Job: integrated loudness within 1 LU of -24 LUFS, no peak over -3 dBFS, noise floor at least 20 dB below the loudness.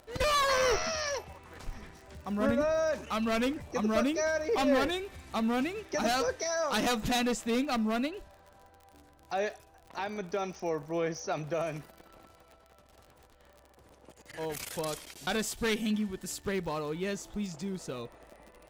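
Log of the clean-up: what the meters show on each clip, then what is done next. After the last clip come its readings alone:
tick rate 40 per s; loudness -31.5 LUFS; peak level -16.5 dBFS; loudness target -24.0 LUFS
-> de-click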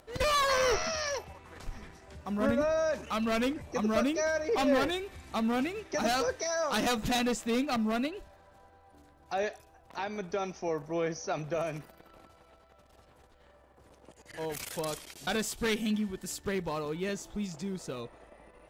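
tick rate 0.054 per s; loudness -31.5 LUFS; peak level -16.5 dBFS; loudness target -24.0 LUFS
-> trim +7.5 dB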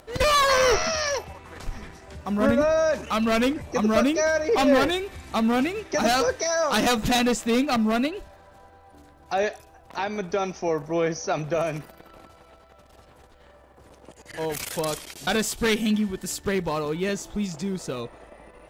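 loudness -24.0 LUFS; peak level -9.0 dBFS; noise floor -53 dBFS

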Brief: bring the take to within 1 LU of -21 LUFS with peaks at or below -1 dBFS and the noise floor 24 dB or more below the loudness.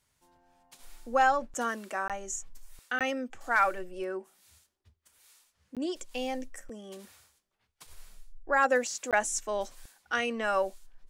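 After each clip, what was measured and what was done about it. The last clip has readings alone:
dropouts 4; longest dropout 17 ms; loudness -30.5 LUFS; peak level -13.0 dBFS; loudness target -21.0 LUFS
-> interpolate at 2.08/2.99/5.75/9.11 s, 17 ms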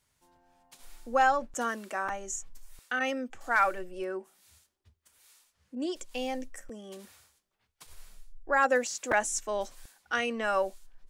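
dropouts 0; loudness -30.5 LUFS; peak level -13.0 dBFS; loudness target -21.0 LUFS
-> trim +9.5 dB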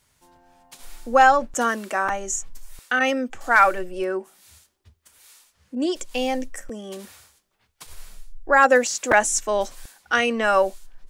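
loudness -21.0 LUFS; peak level -3.5 dBFS; noise floor -70 dBFS

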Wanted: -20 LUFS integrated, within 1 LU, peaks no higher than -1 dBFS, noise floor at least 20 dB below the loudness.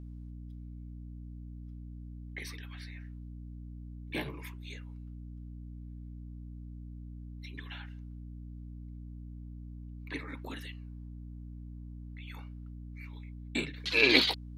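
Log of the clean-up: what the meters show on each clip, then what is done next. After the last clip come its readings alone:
hum 60 Hz; highest harmonic 300 Hz; hum level -42 dBFS; loudness -33.0 LUFS; peak level -7.5 dBFS; loudness target -20.0 LUFS
-> hum notches 60/120/180/240/300 Hz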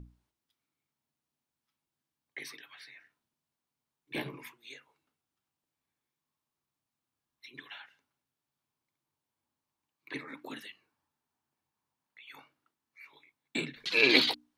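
hum not found; loudness -28.5 LUFS; peak level -7.5 dBFS; loudness target -20.0 LUFS
-> trim +8.5 dB; peak limiter -1 dBFS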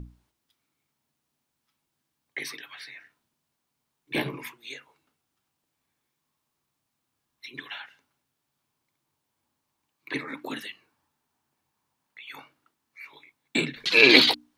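loudness -20.5 LUFS; peak level -1.0 dBFS; noise floor -81 dBFS

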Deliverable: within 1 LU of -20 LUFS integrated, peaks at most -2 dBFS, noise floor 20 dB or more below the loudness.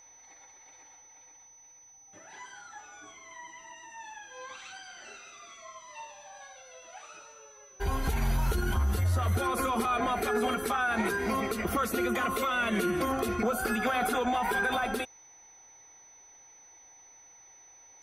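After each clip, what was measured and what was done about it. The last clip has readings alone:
steady tone 6 kHz; tone level -53 dBFS; loudness -29.5 LUFS; peak level -17.0 dBFS; loudness target -20.0 LUFS
-> band-stop 6 kHz, Q 30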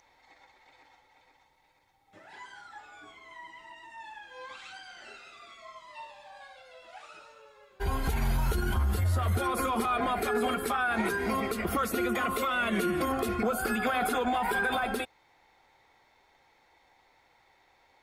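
steady tone not found; loudness -29.5 LUFS; peak level -17.0 dBFS; loudness target -20.0 LUFS
-> trim +9.5 dB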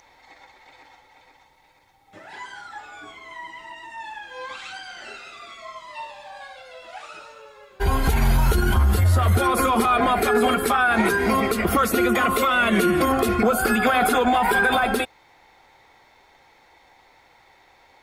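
loudness -20.0 LUFS; peak level -7.5 dBFS; noise floor -56 dBFS

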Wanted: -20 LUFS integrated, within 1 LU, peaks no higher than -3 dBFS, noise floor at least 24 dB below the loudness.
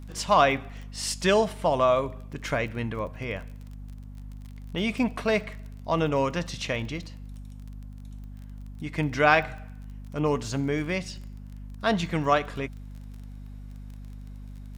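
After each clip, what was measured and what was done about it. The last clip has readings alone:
tick rate 25 per s; hum 50 Hz; highest harmonic 250 Hz; hum level -38 dBFS; loudness -26.5 LUFS; peak level -5.0 dBFS; loudness target -20.0 LUFS
-> de-click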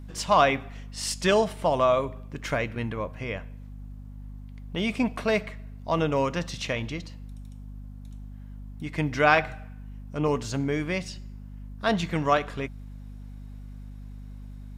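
tick rate 0 per s; hum 50 Hz; highest harmonic 250 Hz; hum level -38 dBFS
-> de-hum 50 Hz, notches 5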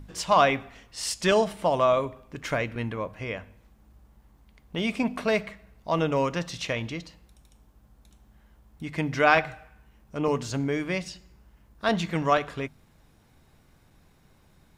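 hum not found; loudness -26.5 LUFS; peak level -4.5 dBFS; loudness target -20.0 LUFS
-> trim +6.5 dB; peak limiter -3 dBFS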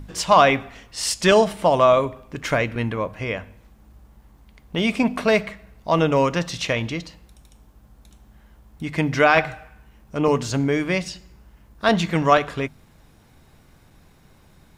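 loudness -20.5 LUFS; peak level -3.0 dBFS; noise floor -54 dBFS

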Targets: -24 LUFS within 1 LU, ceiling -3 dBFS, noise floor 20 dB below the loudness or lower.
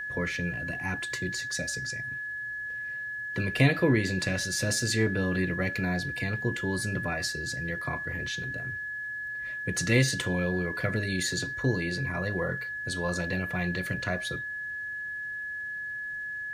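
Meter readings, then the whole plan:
tick rate 27 per s; steady tone 1.7 kHz; tone level -33 dBFS; loudness -30.0 LUFS; peak level -9.5 dBFS; loudness target -24.0 LUFS
-> de-click; band-stop 1.7 kHz, Q 30; trim +6 dB

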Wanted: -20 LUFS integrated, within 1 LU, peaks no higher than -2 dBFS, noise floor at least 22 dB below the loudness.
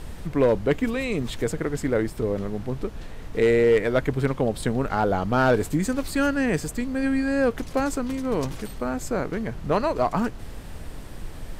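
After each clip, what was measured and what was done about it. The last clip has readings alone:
clipped samples 0.3%; clipping level -12.5 dBFS; noise floor -38 dBFS; noise floor target -47 dBFS; loudness -24.5 LUFS; peak level -12.5 dBFS; loudness target -20.0 LUFS
-> clip repair -12.5 dBFS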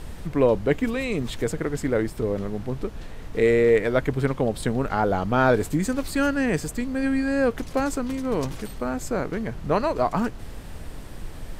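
clipped samples 0.0%; noise floor -38 dBFS; noise floor target -47 dBFS
-> noise print and reduce 9 dB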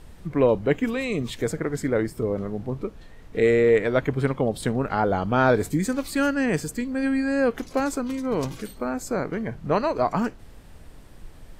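noise floor -46 dBFS; noise floor target -47 dBFS
-> noise print and reduce 6 dB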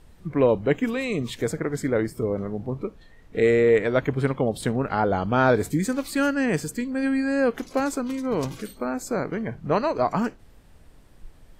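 noise floor -51 dBFS; loudness -24.5 LUFS; peak level -7.5 dBFS; loudness target -20.0 LUFS
-> trim +4.5 dB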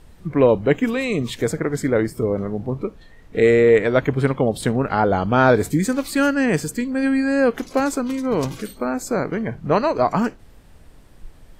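loudness -20.0 LUFS; peak level -3.0 dBFS; noise floor -47 dBFS

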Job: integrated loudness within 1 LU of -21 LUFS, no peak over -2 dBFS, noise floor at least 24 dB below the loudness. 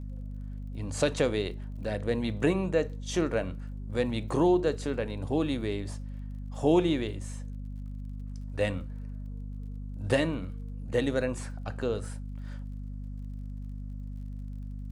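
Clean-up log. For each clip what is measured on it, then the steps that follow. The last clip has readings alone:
tick rate 39 per s; hum 50 Hz; highest harmonic 250 Hz; hum level -35 dBFS; loudness -32.0 LUFS; peak level -12.0 dBFS; loudness target -21.0 LUFS
-> de-click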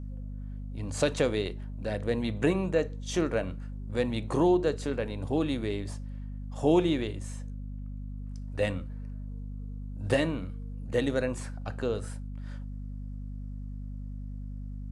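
tick rate 0.13 per s; hum 50 Hz; highest harmonic 250 Hz; hum level -35 dBFS
-> de-hum 50 Hz, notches 5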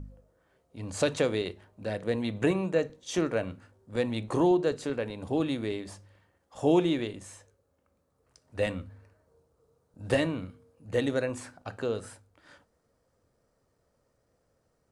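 hum not found; loudness -30.0 LUFS; peak level -12.0 dBFS; loudness target -21.0 LUFS
-> trim +9 dB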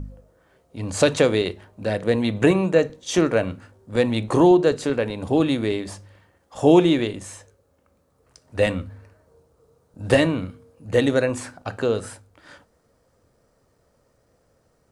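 loudness -21.0 LUFS; peak level -3.0 dBFS; noise floor -65 dBFS

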